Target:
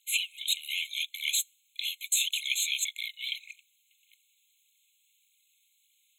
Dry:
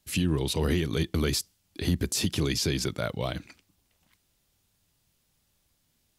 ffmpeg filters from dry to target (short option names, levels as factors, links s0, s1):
-af "aphaser=in_gain=1:out_gain=1:delay=5:decay=0.58:speed=1.7:type=triangular,afftfilt=real='re*eq(mod(floor(b*sr/1024/2100),2),1)':imag='im*eq(mod(floor(b*sr/1024/2100),2),1)':win_size=1024:overlap=0.75,volume=1.78"